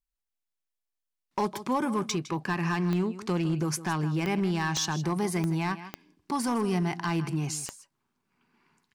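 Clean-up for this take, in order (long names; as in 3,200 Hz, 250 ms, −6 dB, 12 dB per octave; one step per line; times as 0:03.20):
clipped peaks rebuilt −21.5 dBFS
click removal
echo removal 158 ms −14.5 dB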